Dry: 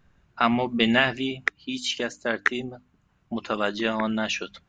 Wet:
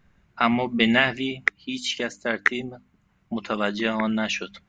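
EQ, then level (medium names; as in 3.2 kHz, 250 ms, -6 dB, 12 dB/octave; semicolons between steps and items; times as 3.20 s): peaking EQ 200 Hz +6.5 dB 0.21 oct; peaking EQ 2.1 kHz +6.5 dB 0.25 oct; 0.0 dB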